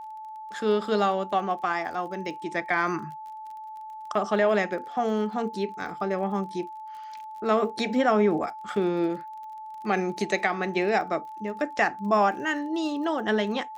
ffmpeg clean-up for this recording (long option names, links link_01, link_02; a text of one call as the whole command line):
ffmpeg -i in.wav -af "adeclick=threshold=4,bandreject=frequency=870:width=30" out.wav